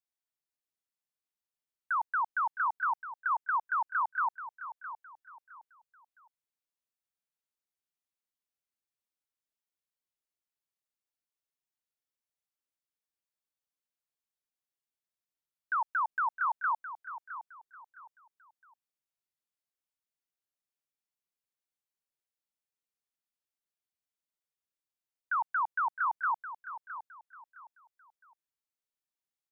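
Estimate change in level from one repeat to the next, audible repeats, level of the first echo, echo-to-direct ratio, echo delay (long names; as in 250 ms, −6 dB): −10.5 dB, 3, −12.0 dB, −11.5 dB, 663 ms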